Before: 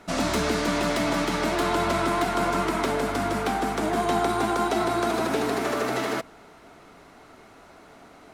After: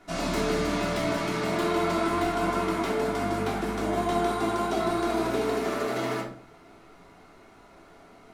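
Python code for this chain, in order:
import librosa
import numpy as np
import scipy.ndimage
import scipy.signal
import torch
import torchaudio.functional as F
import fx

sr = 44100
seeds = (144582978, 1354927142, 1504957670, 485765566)

y = fx.room_shoebox(x, sr, seeds[0], volume_m3=510.0, walls='furnished', distance_m=3.2)
y = F.gain(torch.from_numpy(y), -8.5).numpy()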